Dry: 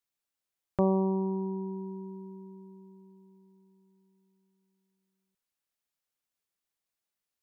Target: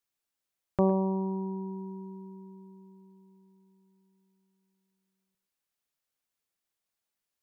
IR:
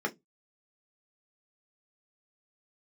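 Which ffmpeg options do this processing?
-filter_complex "[0:a]asplit=2[link_01][link_02];[1:a]atrim=start_sample=2205,asetrate=57330,aresample=44100,adelay=106[link_03];[link_02][link_03]afir=irnorm=-1:irlink=0,volume=-18.5dB[link_04];[link_01][link_04]amix=inputs=2:normalize=0,volume=1dB"

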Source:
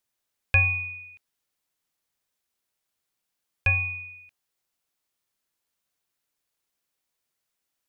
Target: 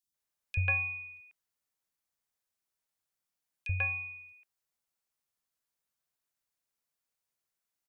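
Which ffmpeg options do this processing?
ffmpeg -i in.wav -filter_complex "[0:a]acrossover=split=340|3100[link_01][link_02][link_03];[link_01]adelay=30[link_04];[link_02]adelay=140[link_05];[link_04][link_05][link_03]amix=inputs=3:normalize=0,volume=-6dB" out.wav

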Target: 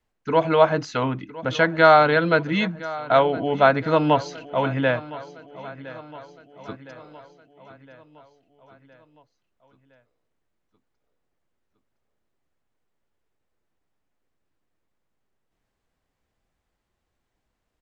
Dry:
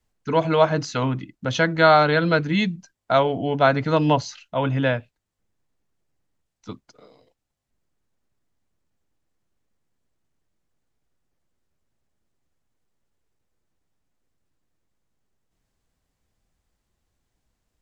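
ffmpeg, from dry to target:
ffmpeg -i in.wav -af "bass=frequency=250:gain=-6,treble=frequency=4000:gain=-9,aecho=1:1:1013|2026|3039|4052|5065:0.133|0.0733|0.0403|0.0222|0.0122,volume=1.5dB" out.wav

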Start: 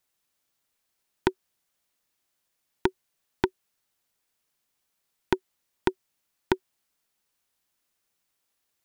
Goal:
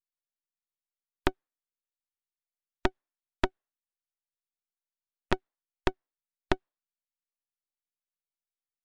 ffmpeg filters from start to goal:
ffmpeg -i in.wav -filter_complex "[0:a]aeval=exprs='max(val(0),0)':channel_layout=same,asplit=2[link_01][link_02];[link_02]asetrate=33038,aresample=44100,atempo=1.33484,volume=-10dB[link_03];[link_01][link_03]amix=inputs=2:normalize=0,afftdn=noise_reduction=26:noise_floor=-54" out.wav

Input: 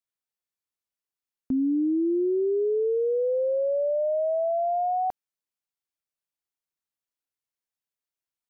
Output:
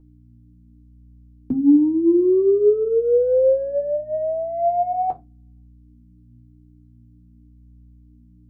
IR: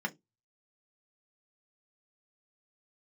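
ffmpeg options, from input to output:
-filter_complex "[0:a]lowshelf=frequency=190:gain=8.5,bandreject=frequency=54.55:width_type=h:width=4,bandreject=frequency=109.1:width_type=h:width=4,bandreject=frequency=163.65:width_type=h:width=4,bandreject=frequency=218.2:width_type=h:width=4,bandreject=frequency=272.75:width_type=h:width=4,bandreject=frequency=327.3:width_type=h:width=4,acrossover=split=100[link_01][link_02];[link_02]acontrast=81[link_03];[link_01][link_03]amix=inputs=2:normalize=0,aeval=exprs='val(0)+0.00562*(sin(2*PI*60*n/s)+sin(2*PI*2*60*n/s)/2+sin(2*PI*3*60*n/s)/3+sin(2*PI*4*60*n/s)/4+sin(2*PI*5*60*n/s)/5)':channel_layout=same,flanger=delay=6.5:depth=8.7:regen=49:speed=0.45:shape=sinusoidal,asplit=2[link_04][link_05];[1:a]atrim=start_sample=2205,asetrate=30429,aresample=44100[link_06];[link_05][link_06]afir=irnorm=-1:irlink=0,volume=-7dB[link_07];[link_04][link_07]amix=inputs=2:normalize=0"

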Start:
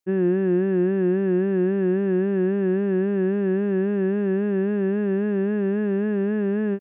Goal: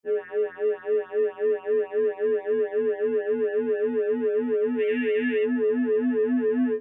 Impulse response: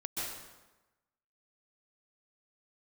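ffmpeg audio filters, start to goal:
-filter_complex "[0:a]afreqshift=38,asplit=3[link_01][link_02][link_03];[link_01]afade=type=out:start_time=4.79:duration=0.02[link_04];[link_02]highshelf=frequency=1600:width_type=q:width=3:gain=11,afade=type=in:start_time=4.79:duration=0.02,afade=type=out:start_time=5.43:duration=0.02[link_05];[link_03]afade=type=in:start_time=5.43:duration=0.02[link_06];[link_04][link_05][link_06]amix=inputs=3:normalize=0,afftfilt=real='re*2*eq(mod(b,4),0)':imag='im*2*eq(mod(b,4),0)':win_size=2048:overlap=0.75"

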